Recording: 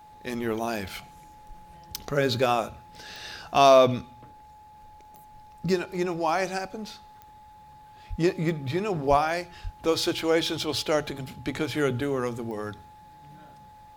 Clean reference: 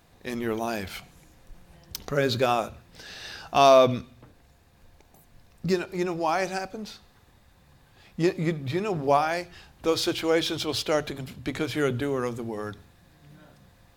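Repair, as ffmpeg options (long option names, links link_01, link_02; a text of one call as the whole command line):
ffmpeg -i in.wav -filter_complex "[0:a]adeclick=threshold=4,bandreject=frequency=850:width=30,asplit=3[link_01][link_02][link_03];[link_01]afade=type=out:start_time=8.09:duration=0.02[link_04];[link_02]highpass=frequency=140:width=0.5412,highpass=frequency=140:width=1.3066,afade=type=in:start_time=8.09:duration=0.02,afade=type=out:start_time=8.21:duration=0.02[link_05];[link_03]afade=type=in:start_time=8.21:duration=0.02[link_06];[link_04][link_05][link_06]amix=inputs=3:normalize=0,asplit=3[link_07][link_08][link_09];[link_07]afade=type=out:start_time=9.09:duration=0.02[link_10];[link_08]highpass=frequency=140:width=0.5412,highpass=frequency=140:width=1.3066,afade=type=in:start_time=9.09:duration=0.02,afade=type=out:start_time=9.21:duration=0.02[link_11];[link_09]afade=type=in:start_time=9.21:duration=0.02[link_12];[link_10][link_11][link_12]amix=inputs=3:normalize=0,asplit=3[link_13][link_14][link_15];[link_13]afade=type=out:start_time=9.63:duration=0.02[link_16];[link_14]highpass=frequency=140:width=0.5412,highpass=frequency=140:width=1.3066,afade=type=in:start_time=9.63:duration=0.02,afade=type=out:start_time=9.75:duration=0.02[link_17];[link_15]afade=type=in:start_time=9.75:duration=0.02[link_18];[link_16][link_17][link_18]amix=inputs=3:normalize=0" out.wav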